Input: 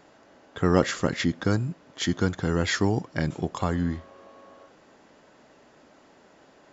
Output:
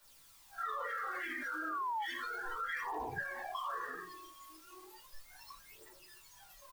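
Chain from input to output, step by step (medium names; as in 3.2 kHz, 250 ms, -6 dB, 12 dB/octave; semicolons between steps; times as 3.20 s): ladder band-pass 1.2 kHz, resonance 55%; in parallel at -11 dB: word length cut 6-bit, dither triangular; on the sum: gate -39 dBFS, range -46 dB; power-law waveshaper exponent 0.35; simulated room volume 120 m³, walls mixed, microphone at 2.3 m; phaser 0.34 Hz, delay 3.5 ms, feedback 43%; delay 79 ms -9.5 dB; painted sound fall, 1.43–2.06 s, 800–1700 Hz -29 dBFS; peak limiter -24 dBFS, peak gain reduction 18.5 dB; compression 2.5:1, threshold -37 dBFS, peak gain reduction 6 dB; spectral noise reduction 18 dB; three bands expanded up and down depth 40%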